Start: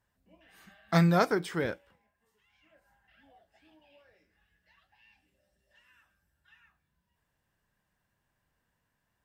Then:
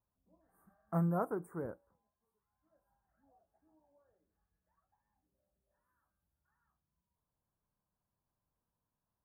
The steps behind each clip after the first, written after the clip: Chebyshev band-stop 1200–9800 Hz, order 3; gain -8.5 dB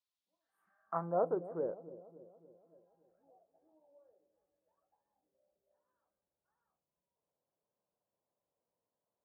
dark delay 0.284 s, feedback 52%, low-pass 570 Hz, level -13 dB; band-pass sweep 3900 Hz -> 530 Hz, 0.49–1.2; gain +8 dB

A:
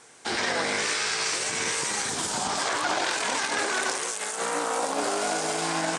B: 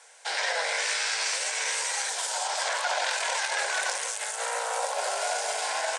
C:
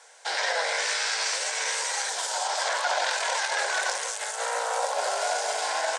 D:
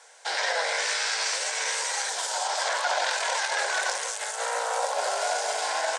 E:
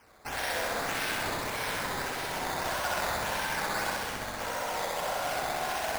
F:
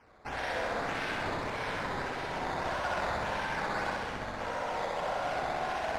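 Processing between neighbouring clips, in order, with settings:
elliptic high-pass 530 Hz, stop band 70 dB; notch 1200 Hz, Q 5.3
fifteen-band EQ 250 Hz +4 dB, 2500 Hz -4 dB, 10000 Hz -6 dB; gain +2.5 dB
nothing audible
decimation with a swept rate 11×, swing 100% 1.7 Hz; flutter echo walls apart 11 m, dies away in 1.4 s; gain -7.5 dB
tape spacing loss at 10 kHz 20 dB; gain +1 dB

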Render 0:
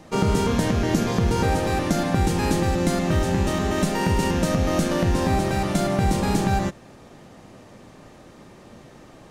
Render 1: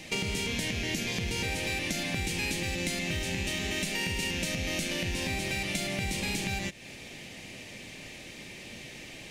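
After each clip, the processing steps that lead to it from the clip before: resonant high shelf 1700 Hz +10.5 dB, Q 3; compressor 4:1, threshold -29 dBFS, peak gain reduction 13 dB; gain -2 dB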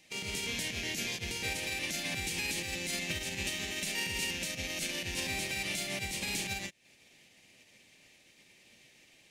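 tilt +1.5 dB/oct; limiter -23 dBFS, peak gain reduction 9.5 dB; upward expander 2.5:1, over -46 dBFS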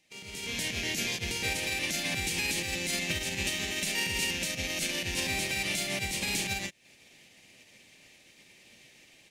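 AGC gain up to 12 dB; gain -8 dB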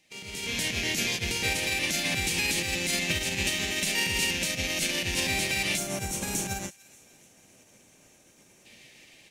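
rattling part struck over -42 dBFS, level -35 dBFS; thin delay 0.292 s, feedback 51%, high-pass 1600 Hz, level -20.5 dB; spectral gain 5.78–8.65, 1700–5400 Hz -11 dB; gain +3.5 dB

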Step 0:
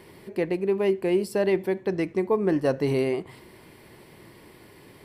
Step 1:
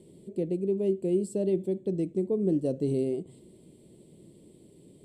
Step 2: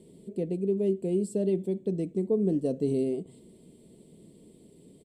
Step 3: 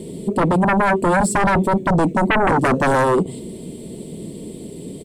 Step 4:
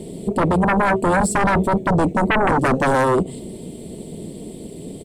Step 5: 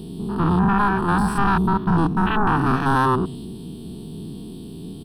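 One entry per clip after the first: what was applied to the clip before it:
EQ curve 110 Hz 0 dB, 170 Hz +8 dB, 340 Hz +4 dB, 600 Hz -1 dB, 880 Hz -17 dB, 1700 Hz -25 dB, 3500 Hz -3 dB, 5400 Hz -11 dB, 8000 Hz +10 dB, 12000 Hz -12 dB; gain -7 dB
comb 4.4 ms, depth 33%
sine folder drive 14 dB, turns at -16 dBFS; gain +3.5 dB
AM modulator 260 Hz, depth 35%; gain +1.5 dB
stepped spectrum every 0.1 s; fixed phaser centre 2100 Hz, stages 6; gain +3.5 dB

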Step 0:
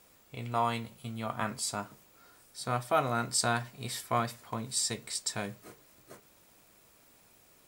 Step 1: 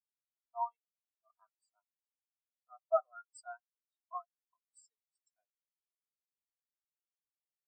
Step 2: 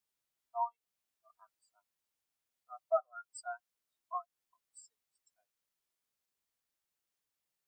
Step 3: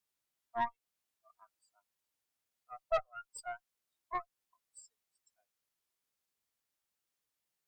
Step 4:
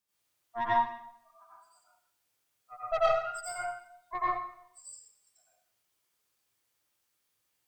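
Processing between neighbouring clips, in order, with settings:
HPF 590 Hz 12 dB/oct; spectral expander 4:1; gain -2.5 dB
compressor 1.5:1, threshold -49 dBFS, peak gain reduction 9 dB; gain +7.5 dB
tube stage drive 30 dB, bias 0.75; gain +5 dB
plate-style reverb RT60 0.68 s, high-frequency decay 0.95×, pre-delay 75 ms, DRR -8.5 dB

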